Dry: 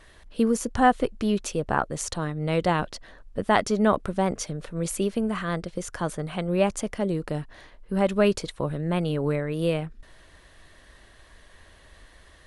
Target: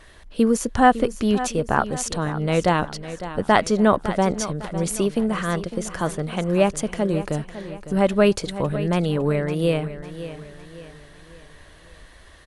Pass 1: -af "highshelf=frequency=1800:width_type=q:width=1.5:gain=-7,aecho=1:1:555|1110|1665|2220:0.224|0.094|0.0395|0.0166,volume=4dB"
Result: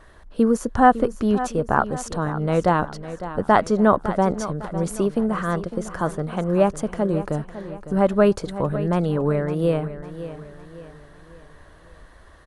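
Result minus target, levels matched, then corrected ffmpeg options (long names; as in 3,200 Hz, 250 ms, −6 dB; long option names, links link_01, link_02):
4,000 Hz band −8.5 dB
-af "aecho=1:1:555|1110|1665|2220:0.224|0.094|0.0395|0.0166,volume=4dB"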